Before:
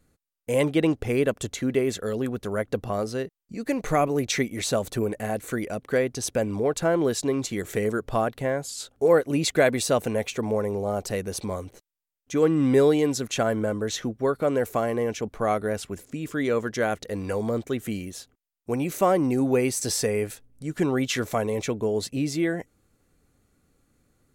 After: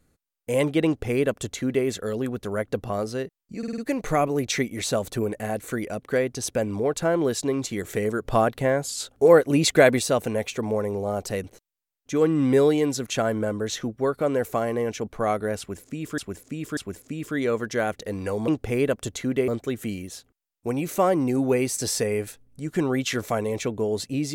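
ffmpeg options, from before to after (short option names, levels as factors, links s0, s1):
-filter_complex "[0:a]asplit=12[s0][s1][s2][s3][s4][s5][s6][s7][s8][s9][s10][s11];[s0]atrim=end=3.632[s12];[s1]atrim=start=3.578:end=3.632[s13];[s2]atrim=start=3.578:end=3.632[s14];[s3]atrim=start=3.578:end=3.632[s15];[s4]atrim=start=3.578:end=8.052[s16];[s5]atrim=start=8.048:end=9.792,asetpts=PTS-STARTPTS,volume=1.58[s17];[s6]atrim=start=9.788:end=11.242[s18];[s7]atrim=start=11.648:end=16.392[s19];[s8]atrim=start=15.798:end=16.392[s20];[s9]atrim=start=15.798:end=17.512[s21];[s10]atrim=start=0.858:end=1.862[s22];[s11]atrim=start=17.508[s23];[s12][s13]acrossfade=d=0.004:c1=hsin:c2=hsin[s24];[s24][s14]acrossfade=d=0.004:c1=hsin:c2=hsin[s25];[s25][s15]acrossfade=d=0.004:c1=hsin:c2=hsin[s26];[s26][s16]acrossfade=d=0.004:c1=hsin:c2=hsin[s27];[s27][s17]acrossfade=d=0.004:c1=hsin:c2=hsin[s28];[s28][s18]acrossfade=d=0.004:c1=hsin:c2=hsin[s29];[s29][s19]acrossfade=d=0.004:c1=hsin:c2=hsin[s30];[s30][s20]acrossfade=d=0.004:c1=hsin:c2=hsin[s31];[s31][s21]acrossfade=d=0.004:c1=hsin:c2=hsin[s32];[s32][s22]acrossfade=d=0.004:c1=hsin:c2=hsin[s33];[s33][s23]acrossfade=d=0.004:c1=hsin:c2=hsin"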